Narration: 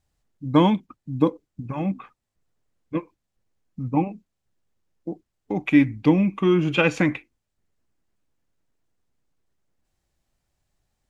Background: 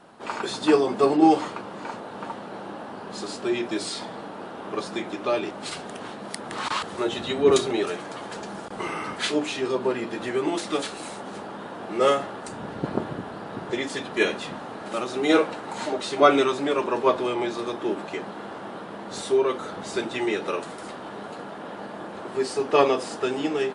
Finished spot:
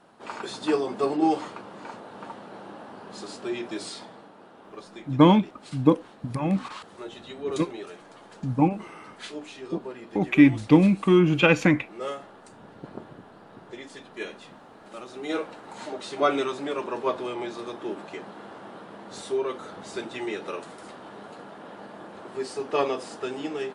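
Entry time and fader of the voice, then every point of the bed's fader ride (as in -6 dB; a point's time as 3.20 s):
4.65 s, +1.0 dB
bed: 3.87 s -5.5 dB
4.34 s -13 dB
14.75 s -13 dB
16.21 s -6 dB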